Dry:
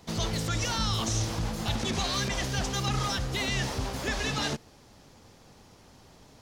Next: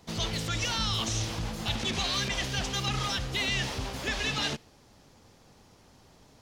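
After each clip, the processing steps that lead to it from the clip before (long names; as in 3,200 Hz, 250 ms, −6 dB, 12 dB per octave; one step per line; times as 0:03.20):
dynamic equaliser 2,900 Hz, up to +7 dB, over −46 dBFS, Q 1.1
level −3 dB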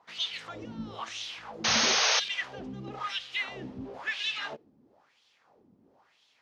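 LFO wah 1 Hz 220–3,400 Hz, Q 2.9
sound drawn into the spectrogram noise, 0:01.64–0:02.20, 420–6,600 Hz −29 dBFS
level +4 dB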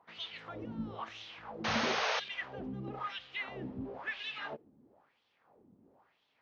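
head-to-tape spacing loss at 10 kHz 31 dB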